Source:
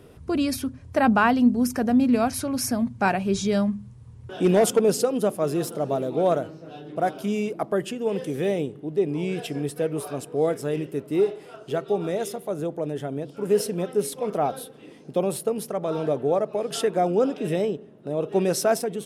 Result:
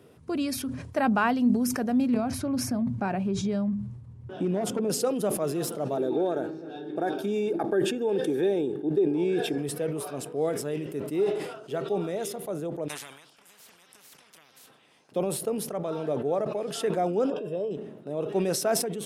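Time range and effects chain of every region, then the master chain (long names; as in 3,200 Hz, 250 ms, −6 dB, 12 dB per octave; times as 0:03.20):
0:02.14–0:04.90: spectral tilt −2.5 dB per octave + notch filter 460 Hz, Q 10 + downward compressor, threshold −18 dBFS
0:05.97–0:09.58: downward compressor 5 to 1, threshold −24 dBFS + notch comb filter 1,000 Hz + hollow resonant body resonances 360/860/1,600/3,600 Hz, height 12 dB, ringing for 20 ms
0:12.88–0:15.12: noise gate −40 dBFS, range −11 dB + downward compressor 4 to 1, threshold −36 dBFS + every bin compressed towards the loudest bin 10 to 1
0:17.30–0:17.71: moving average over 21 samples + spectral tilt +2 dB per octave + comb filter 1.9 ms, depth 52%
whole clip: high-pass filter 120 Hz 12 dB per octave; level that may fall only so fast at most 60 dB per second; level −5 dB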